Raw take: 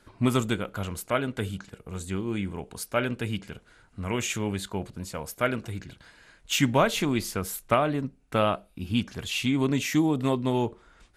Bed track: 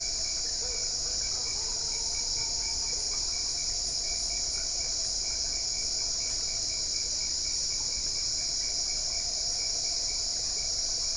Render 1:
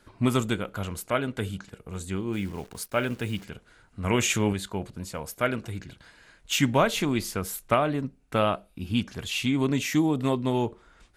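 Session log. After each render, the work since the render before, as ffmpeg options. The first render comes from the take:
ffmpeg -i in.wav -filter_complex "[0:a]asplit=3[link_01][link_02][link_03];[link_01]afade=type=out:start_time=2.32:duration=0.02[link_04];[link_02]acrusher=bits=9:dc=4:mix=0:aa=0.000001,afade=type=in:start_time=2.32:duration=0.02,afade=type=out:start_time=3.44:duration=0.02[link_05];[link_03]afade=type=in:start_time=3.44:duration=0.02[link_06];[link_04][link_05][link_06]amix=inputs=3:normalize=0,asplit=3[link_07][link_08][link_09];[link_07]atrim=end=4.042[link_10];[link_08]atrim=start=4.038:end=4.532,asetpts=PTS-STARTPTS,volume=5dB[link_11];[link_09]atrim=start=4.528[link_12];[link_10][link_11]acrossfade=duration=0.004:curve1=hsin:curve2=hsin[link_13];[link_13][link_12]acrossfade=duration=0.004:curve1=hsin:curve2=hsin" out.wav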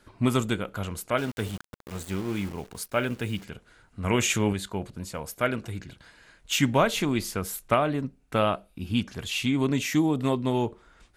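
ffmpeg -i in.wav -filter_complex "[0:a]asplit=3[link_01][link_02][link_03];[link_01]afade=type=out:start_time=1.17:duration=0.02[link_04];[link_02]aeval=exprs='val(0)*gte(abs(val(0)),0.015)':channel_layout=same,afade=type=in:start_time=1.17:duration=0.02,afade=type=out:start_time=2.53:duration=0.02[link_05];[link_03]afade=type=in:start_time=2.53:duration=0.02[link_06];[link_04][link_05][link_06]amix=inputs=3:normalize=0" out.wav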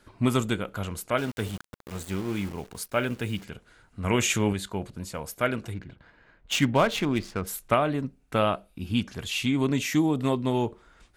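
ffmpeg -i in.wav -filter_complex "[0:a]asplit=3[link_01][link_02][link_03];[link_01]afade=type=out:start_time=5.73:duration=0.02[link_04];[link_02]adynamicsmooth=sensitivity=6.5:basefreq=1900,afade=type=in:start_time=5.73:duration=0.02,afade=type=out:start_time=7.46:duration=0.02[link_05];[link_03]afade=type=in:start_time=7.46:duration=0.02[link_06];[link_04][link_05][link_06]amix=inputs=3:normalize=0" out.wav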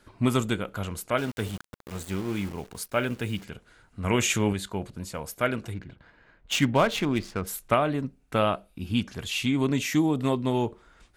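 ffmpeg -i in.wav -af anull out.wav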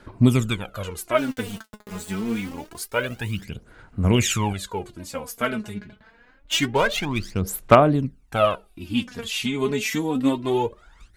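ffmpeg -i in.wav -af "aphaser=in_gain=1:out_gain=1:delay=4.8:decay=0.72:speed=0.26:type=sinusoidal,asoftclip=type=hard:threshold=-2dB" out.wav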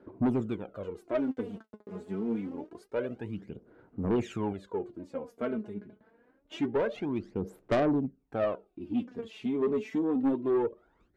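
ffmpeg -i in.wav -af "bandpass=frequency=360:width_type=q:width=1.5:csg=0,asoftclip=type=tanh:threshold=-21.5dB" out.wav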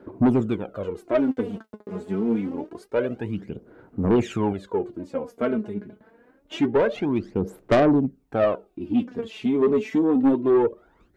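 ffmpeg -i in.wav -af "volume=8.5dB" out.wav

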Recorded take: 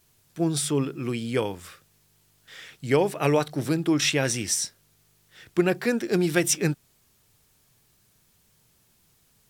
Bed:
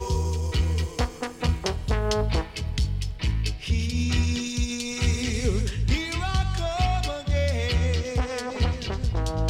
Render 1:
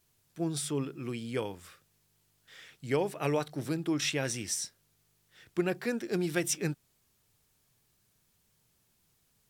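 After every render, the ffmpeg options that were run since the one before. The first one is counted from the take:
ffmpeg -i in.wav -af "volume=-8dB" out.wav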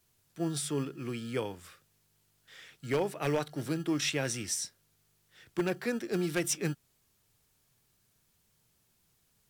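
ffmpeg -i in.wav -filter_complex "[0:a]acrossover=split=190[link_01][link_02];[link_01]acrusher=samples=29:mix=1:aa=0.000001[link_03];[link_03][link_02]amix=inputs=2:normalize=0,aeval=exprs='0.0891*(abs(mod(val(0)/0.0891+3,4)-2)-1)':channel_layout=same" out.wav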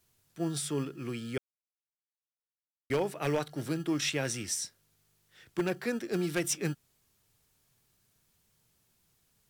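ffmpeg -i in.wav -filter_complex "[0:a]asplit=3[link_01][link_02][link_03];[link_01]atrim=end=1.38,asetpts=PTS-STARTPTS,afade=type=out:start_time=1.376:duration=0.004:curve=hsin[link_04];[link_02]atrim=start=1.38:end=2.9,asetpts=PTS-STARTPTS,volume=0[link_05];[link_03]atrim=start=2.9,asetpts=PTS-STARTPTS,afade=type=in:duration=0.004:curve=hsin[link_06];[link_04][link_05][link_06]concat=n=3:v=0:a=1" out.wav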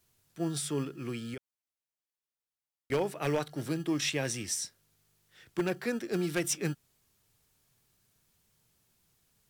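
ffmpeg -i in.wav -filter_complex "[0:a]asettb=1/sr,asplit=3[link_01][link_02][link_03];[link_01]atrim=end=1.344[link_04];[link_02]atrim=start=1.34:end=2.92,asetpts=PTS-STARTPTS,afade=type=in:duration=0.004:curve=qsin,afade=type=out:start_time=1.576:duration=0.004:curve=qsin,acompressor=threshold=-42dB:ratio=2.5:attack=3.2:release=140:knee=1:detection=peak[link_05];[link_03]atrim=start=2.916[link_06];[link_04][link_05]acrossfade=duration=0.004:curve1=hsin:curve2=qsin[link_07];[link_07][link_06]acrossfade=duration=0.004:curve1=qsin:curve2=hsin,asettb=1/sr,asplit=3[link_08][link_09][link_10];[link_08]atrim=end=3.714[link_11];[link_09]atrim=start=3.71:end=4.51,asetpts=PTS-STARTPTS,afade=type=in:duration=0.004:curve=qsin,afade=type=out:start_time=0.796:duration=0.004:curve=qsin,bandreject=frequency=1400:width=9.6[link_12];[link_10]atrim=start=4.506[link_13];[link_11][link_12]acrossfade=duration=0.004:curve1=hsin:curve2=qsin[link_14];[link_14][link_13]acrossfade=duration=0.004:curve1=qsin:curve2=hsin" out.wav

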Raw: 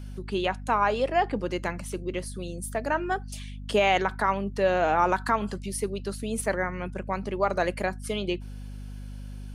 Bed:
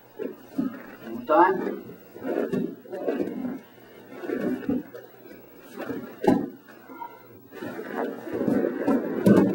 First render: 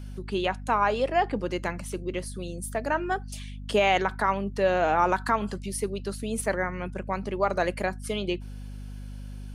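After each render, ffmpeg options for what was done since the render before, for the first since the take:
ffmpeg -i in.wav -af anull out.wav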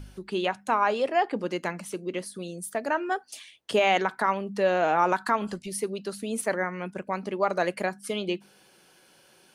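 ffmpeg -i in.wav -af "bandreject=frequency=50:width_type=h:width=4,bandreject=frequency=100:width_type=h:width=4,bandreject=frequency=150:width_type=h:width=4,bandreject=frequency=200:width_type=h:width=4,bandreject=frequency=250:width_type=h:width=4" out.wav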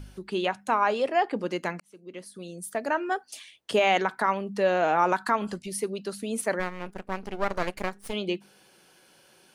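ffmpeg -i in.wav -filter_complex "[0:a]asplit=3[link_01][link_02][link_03];[link_01]afade=type=out:start_time=6.59:duration=0.02[link_04];[link_02]aeval=exprs='max(val(0),0)':channel_layout=same,afade=type=in:start_time=6.59:duration=0.02,afade=type=out:start_time=8.12:duration=0.02[link_05];[link_03]afade=type=in:start_time=8.12:duration=0.02[link_06];[link_04][link_05][link_06]amix=inputs=3:normalize=0,asplit=2[link_07][link_08];[link_07]atrim=end=1.8,asetpts=PTS-STARTPTS,afade=type=out:start_time=1.796:duration=0.004:curve=hsin[link_09];[link_08]atrim=start=1.8,asetpts=PTS-STARTPTS,afade=type=in:duration=1[link_10];[link_09][link_10]concat=n=2:v=0:a=1" out.wav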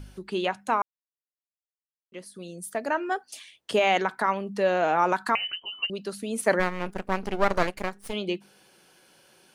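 ffmpeg -i in.wav -filter_complex "[0:a]asettb=1/sr,asplit=3[link_01][link_02][link_03];[link_01]atrim=end=5.354[link_04];[link_02]atrim=start=5.35:end=5.9,asetpts=PTS-STARTPTS,afade=type=in:duration=0.004:curve=qsin,afade=type=out:start_time=0.546:duration=0.004:curve=qsin,lowpass=frequency=2700:width_type=q:width=0.5098,lowpass=frequency=2700:width_type=q:width=0.6013,lowpass=frequency=2700:width_type=q:width=0.9,lowpass=frequency=2700:width_type=q:width=2.563,afreqshift=-3200[link_05];[link_03]atrim=start=5.896[link_06];[link_04][link_05]acrossfade=duration=0.004:curve1=hsin:curve2=qsin[link_07];[link_07][link_06]acrossfade=duration=0.004:curve1=qsin:curve2=hsin,asettb=1/sr,asplit=3[link_08][link_09][link_10];[link_08]atrim=end=6.464[link_11];[link_09]atrim=start=6.46:end=7.67,asetpts=PTS-STARTPTS,afade=type=in:duration=0.004:curve=qsin,afade=type=out:start_time=1.206:duration=0.004:curve=qsin,acontrast=35[link_12];[link_10]atrim=start=7.666[link_13];[link_11][link_12]acrossfade=duration=0.004:curve1=hsin:curve2=qsin[link_14];[link_14][link_13]acrossfade=duration=0.004:curve1=qsin:curve2=hsin,asplit=3[link_15][link_16][link_17];[link_15]atrim=end=0.82,asetpts=PTS-STARTPTS,afade=type=out:start_time=0.816:duration=0.004:curve=hsin[link_18];[link_16]atrim=start=0.82:end=2.12,asetpts=PTS-STARTPTS,volume=0[link_19];[link_17]atrim=start=2.12,asetpts=PTS-STARTPTS,afade=type=in:duration=0.004:curve=hsin[link_20];[link_18][link_19][link_20]concat=n=3:v=0:a=1" out.wav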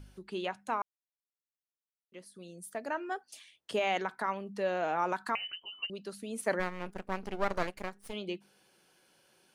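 ffmpeg -i in.wav -af "volume=-8.5dB" out.wav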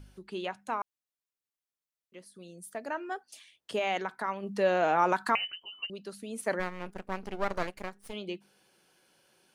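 ffmpeg -i in.wav -filter_complex "[0:a]asplit=3[link_01][link_02][link_03];[link_01]afade=type=out:start_time=4.42:duration=0.02[link_04];[link_02]acontrast=51,afade=type=in:start_time=4.42:duration=0.02,afade=type=out:start_time=5.44:duration=0.02[link_05];[link_03]afade=type=in:start_time=5.44:duration=0.02[link_06];[link_04][link_05][link_06]amix=inputs=3:normalize=0" out.wav

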